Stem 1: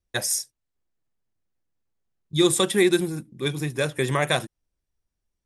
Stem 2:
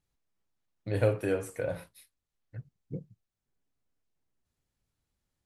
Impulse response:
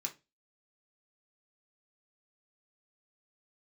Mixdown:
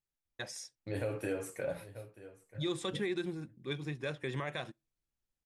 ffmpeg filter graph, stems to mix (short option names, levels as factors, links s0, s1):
-filter_complex "[0:a]lowpass=3200,adelay=250,volume=0.266,asplit=2[s0][s1];[s1]volume=0.0794[s2];[1:a]flanger=delay=4.9:depth=6.8:regen=-43:speed=0.58:shape=sinusoidal,agate=range=0.355:threshold=0.00141:ratio=16:detection=peak,highshelf=f=4200:g=-6.5,volume=0.891,asplit=3[s3][s4][s5];[s4]volume=0.501[s6];[s5]volume=0.133[s7];[2:a]atrim=start_sample=2205[s8];[s2][s6]amix=inputs=2:normalize=0[s9];[s9][s8]afir=irnorm=-1:irlink=0[s10];[s7]aecho=0:1:935:1[s11];[s0][s3][s10][s11]amix=inputs=4:normalize=0,highshelf=f=3800:g=7,alimiter=level_in=1.19:limit=0.0631:level=0:latency=1:release=91,volume=0.841"